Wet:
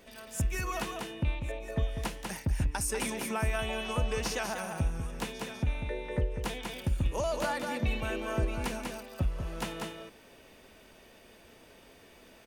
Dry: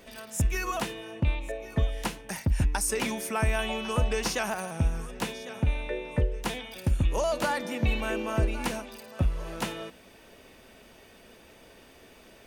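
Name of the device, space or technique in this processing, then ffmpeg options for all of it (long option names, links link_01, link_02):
ducked delay: -filter_complex "[0:a]asplit=3[link_01][link_02][link_03];[link_02]adelay=194,volume=-2.5dB[link_04];[link_03]apad=whole_len=558275[link_05];[link_04][link_05]sidechaincompress=threshold=-27dB:ratio=8:attack=5.3:release=547[link_06];[link_01][link_06]amix=inputs=2:normalize=0,volume=-4.5dB"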